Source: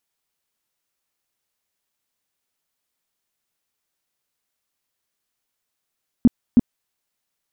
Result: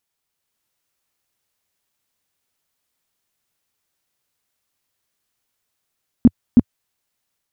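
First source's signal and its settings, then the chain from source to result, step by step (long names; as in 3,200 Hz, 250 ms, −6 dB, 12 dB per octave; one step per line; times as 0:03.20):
tone bursts 240 Hz, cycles 6, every 0.32 s, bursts 2, −7 dBFS
parametric band 95 Hz +5 dB 0.94 octaves
automatic gain control gain up to 3.5 dB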